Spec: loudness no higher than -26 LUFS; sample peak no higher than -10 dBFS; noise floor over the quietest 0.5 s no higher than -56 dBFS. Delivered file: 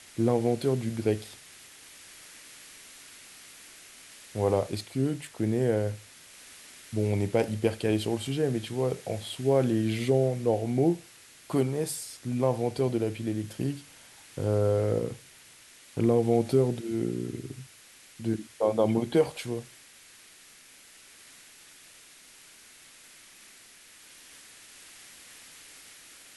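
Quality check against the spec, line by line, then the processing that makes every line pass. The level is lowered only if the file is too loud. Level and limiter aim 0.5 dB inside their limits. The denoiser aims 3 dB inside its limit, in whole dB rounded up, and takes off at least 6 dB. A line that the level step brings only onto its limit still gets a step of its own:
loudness -28.5 LUFS: OK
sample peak -11.0 dBFS: OK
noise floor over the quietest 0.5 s -54 dBFS: fail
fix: denoiser 6 dB, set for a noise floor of -54 dBFS

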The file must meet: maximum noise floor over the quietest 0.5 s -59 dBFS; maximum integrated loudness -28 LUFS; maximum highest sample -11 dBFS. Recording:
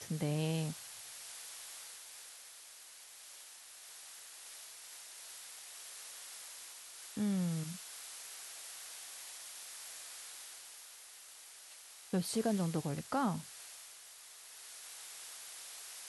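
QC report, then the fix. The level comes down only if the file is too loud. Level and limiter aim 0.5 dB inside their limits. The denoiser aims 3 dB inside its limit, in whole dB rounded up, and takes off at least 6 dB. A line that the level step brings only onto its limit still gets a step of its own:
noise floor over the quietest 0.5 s -55 dBFS: fail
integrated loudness -42.5 LUFS: OK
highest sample -23.5 dBFS: OK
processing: denoiser 7 dB, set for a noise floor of -55 dBFS

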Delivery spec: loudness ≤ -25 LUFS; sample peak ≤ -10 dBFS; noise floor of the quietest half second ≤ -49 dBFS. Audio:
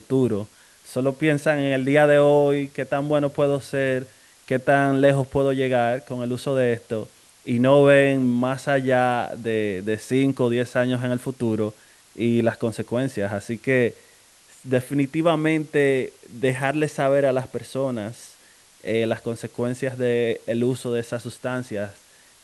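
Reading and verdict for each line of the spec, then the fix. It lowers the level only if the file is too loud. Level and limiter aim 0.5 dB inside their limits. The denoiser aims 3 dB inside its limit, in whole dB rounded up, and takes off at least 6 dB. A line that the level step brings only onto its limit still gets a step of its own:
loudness -22.0 LUFS: fail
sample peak -4.0 dBFS: fail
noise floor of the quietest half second -53 dBFS: OK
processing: gain -3.5 dB; limiter -10.5 dBFS

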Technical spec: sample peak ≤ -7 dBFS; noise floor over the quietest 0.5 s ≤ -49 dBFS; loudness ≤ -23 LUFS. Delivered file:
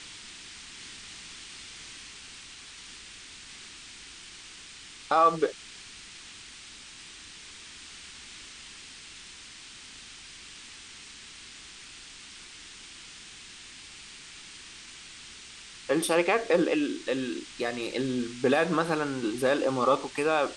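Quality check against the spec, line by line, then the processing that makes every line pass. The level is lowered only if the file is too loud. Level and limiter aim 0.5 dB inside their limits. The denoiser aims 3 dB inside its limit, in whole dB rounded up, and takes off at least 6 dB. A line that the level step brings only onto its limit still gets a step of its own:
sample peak -10.5 dBFS: OK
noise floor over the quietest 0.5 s -47 dBFS: fail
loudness -28.0 LUFS: OK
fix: denoiser 6 dB, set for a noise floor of -47 dBFS

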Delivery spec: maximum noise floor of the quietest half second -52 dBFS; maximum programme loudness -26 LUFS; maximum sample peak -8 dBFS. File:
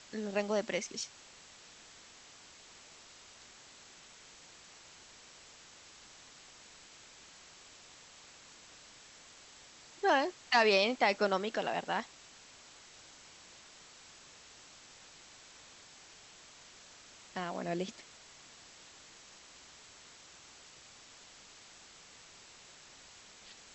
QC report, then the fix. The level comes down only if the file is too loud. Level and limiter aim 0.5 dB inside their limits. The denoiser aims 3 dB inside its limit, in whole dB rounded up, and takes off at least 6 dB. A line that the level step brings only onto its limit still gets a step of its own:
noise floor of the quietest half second -56 dBFS: OK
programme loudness -32.5 LUFS: OK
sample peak -14.0 dBFS: OK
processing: none

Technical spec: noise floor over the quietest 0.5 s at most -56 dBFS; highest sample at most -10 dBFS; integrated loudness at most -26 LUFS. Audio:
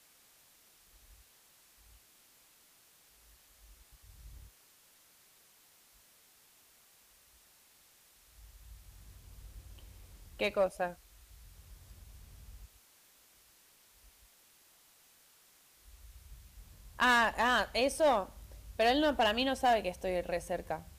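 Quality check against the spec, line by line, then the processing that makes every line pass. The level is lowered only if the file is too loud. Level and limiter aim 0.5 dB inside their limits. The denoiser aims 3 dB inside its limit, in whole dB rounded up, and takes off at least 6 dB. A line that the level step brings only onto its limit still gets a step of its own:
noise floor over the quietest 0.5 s -64 dBFS: OK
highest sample -20.5 dBFS: OK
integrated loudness -31.0 LUFS: OK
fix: none

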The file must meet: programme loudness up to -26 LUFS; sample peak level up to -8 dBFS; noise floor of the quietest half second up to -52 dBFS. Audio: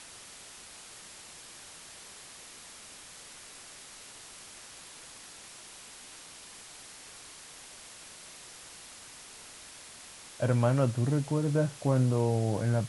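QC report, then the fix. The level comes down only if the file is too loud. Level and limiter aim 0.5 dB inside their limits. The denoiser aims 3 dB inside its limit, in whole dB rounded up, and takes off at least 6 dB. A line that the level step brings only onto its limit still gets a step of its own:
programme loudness -28.0 LUFS: OK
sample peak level -13.5 dBFS: OK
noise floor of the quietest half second -49 dBFS: fail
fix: denoiser 6 dB, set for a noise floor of -49 dBFS

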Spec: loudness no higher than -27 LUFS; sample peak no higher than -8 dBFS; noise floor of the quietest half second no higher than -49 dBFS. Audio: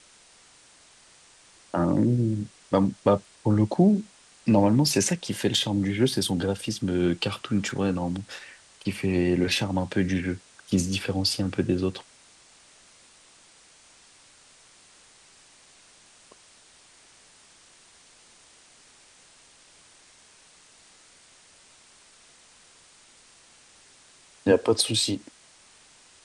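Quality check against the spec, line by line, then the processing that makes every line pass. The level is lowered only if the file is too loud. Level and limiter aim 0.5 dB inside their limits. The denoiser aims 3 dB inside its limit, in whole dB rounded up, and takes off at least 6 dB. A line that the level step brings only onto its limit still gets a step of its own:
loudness -25.0 LUFS: fail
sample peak -7.0 dBFS: fail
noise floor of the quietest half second -55 dBFS: OK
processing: gain -2.5 dB

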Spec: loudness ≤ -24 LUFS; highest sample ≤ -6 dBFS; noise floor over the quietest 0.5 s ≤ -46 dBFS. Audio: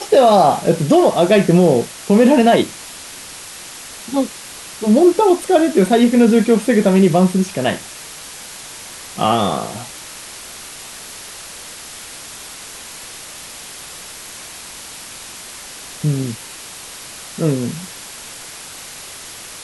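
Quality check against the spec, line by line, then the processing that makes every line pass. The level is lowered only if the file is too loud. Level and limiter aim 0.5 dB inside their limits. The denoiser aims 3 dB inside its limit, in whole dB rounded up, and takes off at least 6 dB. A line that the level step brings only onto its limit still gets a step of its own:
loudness -14.5 LUFS: fail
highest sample -2.0 dBFS: fail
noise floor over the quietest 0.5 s -34 dBFS: fail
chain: denoiser 6 dB, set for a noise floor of -34 dBFS; gain -10 dB

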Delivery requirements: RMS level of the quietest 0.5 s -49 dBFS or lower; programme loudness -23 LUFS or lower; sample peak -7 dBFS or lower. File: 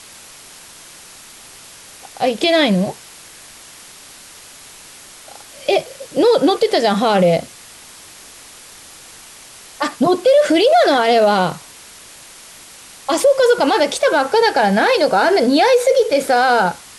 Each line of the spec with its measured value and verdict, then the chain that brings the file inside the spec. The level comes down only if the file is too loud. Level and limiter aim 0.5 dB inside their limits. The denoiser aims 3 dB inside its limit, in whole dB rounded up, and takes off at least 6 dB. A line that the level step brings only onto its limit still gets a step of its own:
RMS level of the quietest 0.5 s -40 dBFS: fail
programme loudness -15.0 LUFS: fail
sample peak -5.0 dBFS: fail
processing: denoiser 6 dB, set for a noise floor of -40 dBFS; gain -8.5 dB

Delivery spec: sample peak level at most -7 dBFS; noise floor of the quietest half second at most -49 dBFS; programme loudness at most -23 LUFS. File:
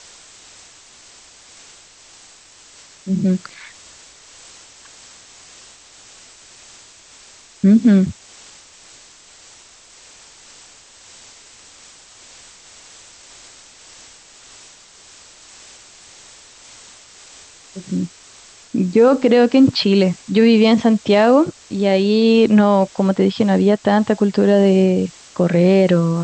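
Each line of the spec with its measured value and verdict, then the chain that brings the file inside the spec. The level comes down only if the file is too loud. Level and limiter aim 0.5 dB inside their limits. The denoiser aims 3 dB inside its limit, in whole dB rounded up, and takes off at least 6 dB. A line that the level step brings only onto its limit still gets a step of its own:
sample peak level -4.0 dBFS: fail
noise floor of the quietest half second -46 dBFS: fail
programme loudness -15.0 LUFS: fail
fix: gain -8.5 dB

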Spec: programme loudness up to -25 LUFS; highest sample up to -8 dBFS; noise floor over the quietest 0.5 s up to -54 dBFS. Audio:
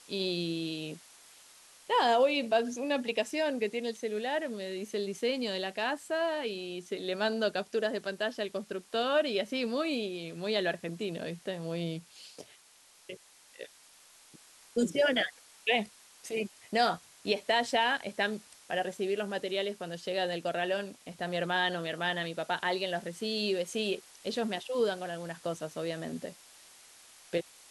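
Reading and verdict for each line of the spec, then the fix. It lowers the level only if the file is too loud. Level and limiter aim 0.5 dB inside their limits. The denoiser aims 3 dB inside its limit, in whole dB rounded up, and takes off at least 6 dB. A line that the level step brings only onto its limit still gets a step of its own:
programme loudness -32.5 LUFS: OK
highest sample -14.0 dBFS: OK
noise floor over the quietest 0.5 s -60 dBFS: OK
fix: none

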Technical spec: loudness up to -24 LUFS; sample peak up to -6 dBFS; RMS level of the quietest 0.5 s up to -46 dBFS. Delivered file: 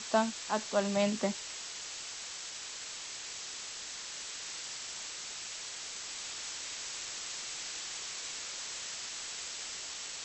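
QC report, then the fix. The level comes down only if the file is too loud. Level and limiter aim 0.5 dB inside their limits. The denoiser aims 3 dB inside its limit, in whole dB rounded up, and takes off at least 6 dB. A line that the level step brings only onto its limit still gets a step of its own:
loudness -37.0 LUFS: OK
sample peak -15.0 dBFS: OK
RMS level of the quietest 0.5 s -43 dBFS: fail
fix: denoiser 6 dB, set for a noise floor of -43 dBFS

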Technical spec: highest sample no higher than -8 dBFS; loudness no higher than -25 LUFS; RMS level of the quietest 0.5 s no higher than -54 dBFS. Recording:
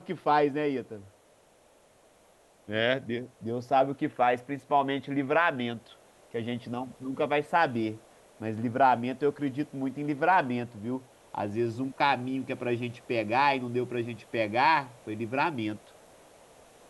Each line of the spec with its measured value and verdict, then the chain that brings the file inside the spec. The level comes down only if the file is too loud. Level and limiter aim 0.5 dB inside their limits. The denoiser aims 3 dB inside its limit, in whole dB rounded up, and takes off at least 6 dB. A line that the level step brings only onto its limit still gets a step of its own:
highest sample -10.0 dBFS: OK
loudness -29.0 LUFS: OK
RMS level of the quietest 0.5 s -61 dBFS: OK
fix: none

